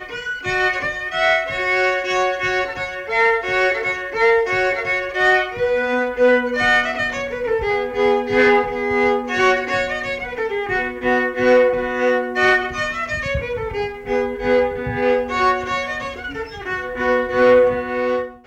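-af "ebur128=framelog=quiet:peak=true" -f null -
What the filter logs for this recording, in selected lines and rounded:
Integrated loudness:
  I:         -18.4 LUFS
  Threshold: -28.4 LUFS
Loudness range:
  LRA:         3.1 LU
  Threshold: -38.4 LUFS
  LRA low:   -20.4 LUFS
  LRA high:  -17.3 LUFS
True peak:
  Peak:       -6.2 dBFS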